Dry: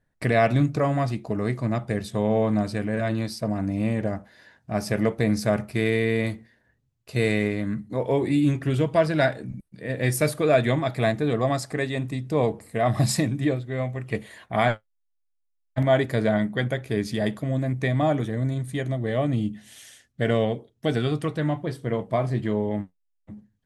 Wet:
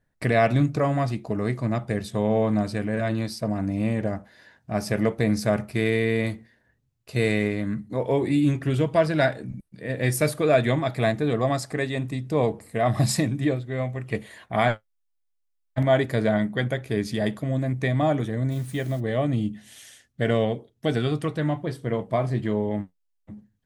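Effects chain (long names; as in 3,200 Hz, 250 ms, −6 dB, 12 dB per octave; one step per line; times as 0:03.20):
0:18.50–0:18.99: background noise white −53 dBFS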